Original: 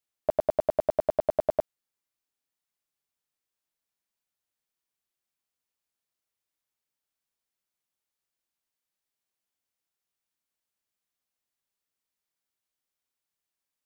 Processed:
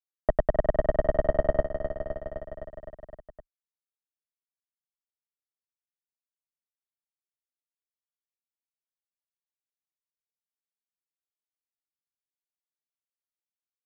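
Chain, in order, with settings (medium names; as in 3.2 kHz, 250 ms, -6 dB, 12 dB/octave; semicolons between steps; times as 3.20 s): bass shelf 70 Hz +11 dB; power-law waveshaper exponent 2; level-controlled noise filter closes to 1.2 kHz, open at -24 dBFS; tilt EQ -3.5 dB/octave; feedback delay 257 ms, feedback 60%, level -10 dB; three bands compressed up and down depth 40%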